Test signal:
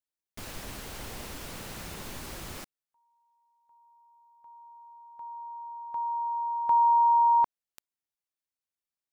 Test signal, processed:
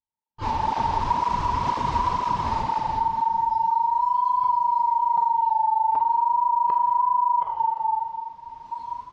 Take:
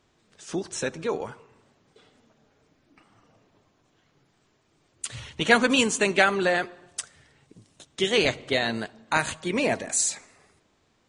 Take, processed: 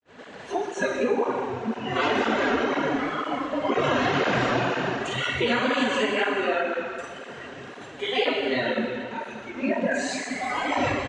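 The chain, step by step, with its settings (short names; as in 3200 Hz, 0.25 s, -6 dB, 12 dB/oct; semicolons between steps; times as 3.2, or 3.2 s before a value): per-bin compression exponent 0.2; AGC gain up to 13.5 dB; dynamic EQ 1100 Hz, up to +5 dB, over -34 dBFS, Q 3.7; on a send: tapped delay 48/49/170/408 ms -7.5/-12.5/-6/-16.5 dB; on the sum: spectral noise reduction 21 dB; LPF 5700 Hz 24 dB/oct; tilt -1.5 dB/oct; plate-style reverb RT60 2.1 s, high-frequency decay 0.85×, pre-delay 0 ms, DRR 1.5 dB; wow and flutter 0.35 Hz 74 cents; gate -38 dBFS, range -35 dB; compressor 6:1, threshold -15 dBFS; tape flanging out of phase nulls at 2 Hz, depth 6.7 ms; gain -2 dB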